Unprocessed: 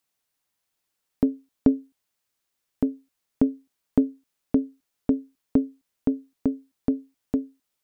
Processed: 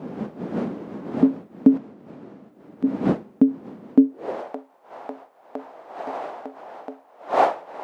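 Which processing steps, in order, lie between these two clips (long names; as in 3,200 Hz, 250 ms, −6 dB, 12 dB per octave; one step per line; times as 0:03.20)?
wind on the microphone 440 Hz −29 dBFS
0:01.77–0:02.84: downward compressor 6 to 1, threshold −40 dBFS, peak gain reduction 18.5 dB
high-pass filter sweep 210 Hz → 730 Hz, 0:03.87–0:04.52
level −1 dB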